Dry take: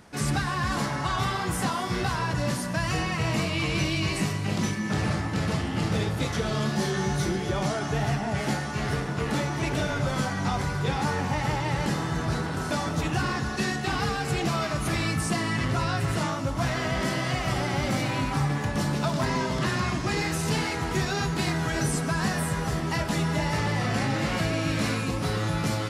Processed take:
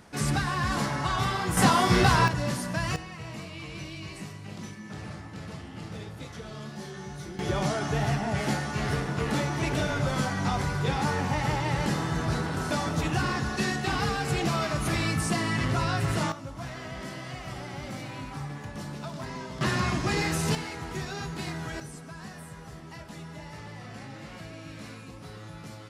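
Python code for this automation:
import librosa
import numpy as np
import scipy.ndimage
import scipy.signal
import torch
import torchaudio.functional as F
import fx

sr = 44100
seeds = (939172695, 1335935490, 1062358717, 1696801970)

y = fx.gain(x, sr, db=fx.steps((0.0, -0.5), (1.57, 7.0), (2.28, -2.0), (2.96, -13.0), (7.39, -0.5), (16.32, -11.0), (19.61, 0.0), (20.55, -8.0), (21.8, -16.0)))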